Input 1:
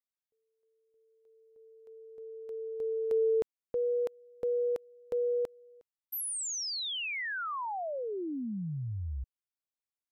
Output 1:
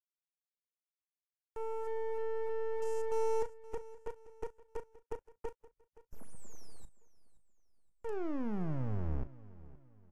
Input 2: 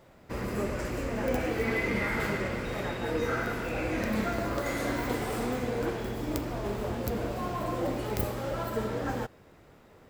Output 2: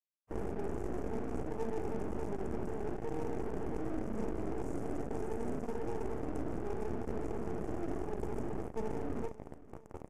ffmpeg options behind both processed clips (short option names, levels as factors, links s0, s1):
-filter_complex "[0:a]aemphasis=mode=reproduction:type=cd,afftfilt=real='re*(1-between(b*sr/4096,470,3700))':imag='im*(1-between(b*sr/4096,470,3700))':win_size=4096:overlap=0.75,equalizer=f=125:t=o:w=1:g=-6,equalizer=f=500:t=o:w=1:g=10,equalizer=f=4000:t=o:w=1:g=-11,equalizer=f=8000:t=o:w=1:g=10,areverse,acompressor=threshold=0.00891:ratio=8:attack=1.7:release=201:knee=6:detection=rms,areverse,acrusher=bits=5:dc=4:mix=0:aa=0.000001,adynamicsmooth=sensitivity=5:basefreq=510,aexciter=amount=11.4:drive=7.6:freq=5900,asplit=2[s0][s1];[s1]adelay=38,volume=0.2[s2];[s0][s2]amix=inputs=2:normalize=0,asplit=2[s3][s4];[s4]aecho=0:1:522|1044|1566:0.112|0.0426|0.0162[s5];[s3][s5]amix=inputs=2:normalize=0,volume=4.22" -ar 32000 -c:a libvorbis -b:a 64k